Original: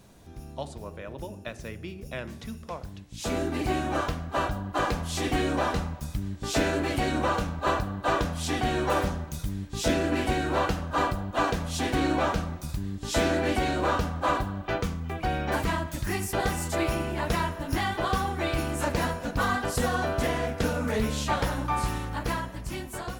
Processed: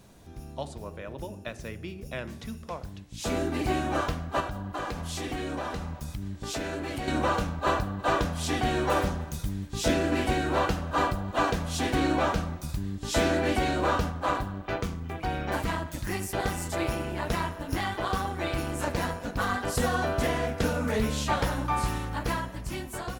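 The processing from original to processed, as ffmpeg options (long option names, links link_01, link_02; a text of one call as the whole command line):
ffmpeg -i in.wav -filter_complex "[0:a]asettb=1/sr,asplit=3[link_01][link_02][link_03];[link_01]atrim=end=4.404[link_04];[link_02]atrim=start=4.4:end=7.08,asetpts=PTS-STARTPTS,afade=type=in:duration=0.004:curve=qsin,afade=type=out:start_time=2.676:duration=0.004:curve=qsin,acompressor=threshold=-31dB:ratio=3:attack=3.2:release=140:knee=1:detection=peak[link_05];[link_03]atrim=start=7.076[link_06];[link_04][link_05]acrossfade=duration=0.004:curve1=hsin:curve2=qsin[link_07];[link_07][link_06]acrossfade=duration=0.004:curve1=qsin:curve2=hsin,asplit=3[link_08][link_09][link_10];[link_08]afade=type=out:start_time=7.98:duration=0.02[link_11];[link_09]aecho=1:1:304:0.0668,afade=type=in:start_time=7.98:duration=0.02,afade=type=out:start_time=11.87:duration=0.02[link_12];[link_10]afade=type=in:start_time=11.87:duration=0.02[link_13];[link_11][link_12][link_13]amix=inputs=3:normalize=0,asplit=3[link_14][link_15][link_16];[link_14]afade=type=out:start_time=14.1:duration=0.02[link_17];[link_15]tremolo=f=190:d=0.519,afade=type=in:start_time=14.1:duration=0.02,afade=type=out:start_time=19.66:duration=0.02[link_18];[link_16]afade=type=in:start_time=19.66:duration=0.02[link_19];[link_17][link_18][link_19]amix=inputs=3:normalize=0" out.wav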